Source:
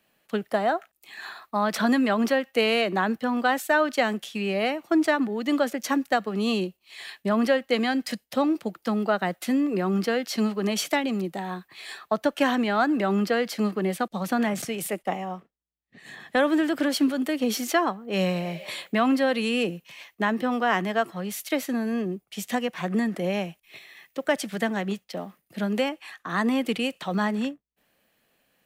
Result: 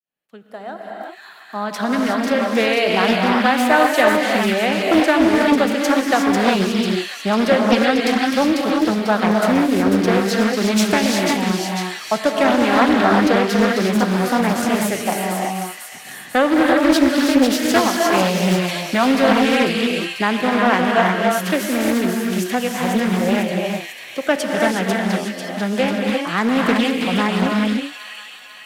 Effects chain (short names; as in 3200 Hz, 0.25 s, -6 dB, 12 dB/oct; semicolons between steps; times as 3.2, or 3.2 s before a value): opening faded in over 3.30 s; thin delay 0.495 s, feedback 56%, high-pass 2200 Hz, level -4 dB; non-linear reverb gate 0.39 s rising, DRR -0.5 dB; Doppler distortion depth 0.4 ms; gain +5.5 dB